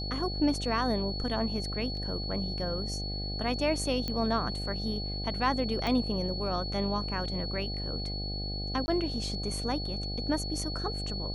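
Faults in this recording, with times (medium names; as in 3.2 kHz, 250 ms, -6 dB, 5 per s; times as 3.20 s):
buzz 50 Hz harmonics 16 -36 dBFS
whine 4.4 kHz -37 dBFS
1.97 s: dropout 2.8 ms
4.08 s: pop -19 dBFS
5.87 s: pop -18 dBFS
8.86–8.88 s: dropout 20 ms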